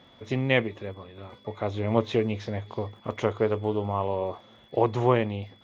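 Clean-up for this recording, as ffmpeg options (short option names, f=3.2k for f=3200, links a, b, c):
-af "adeclick=t=4,bandreject=f=3.4k:w=30"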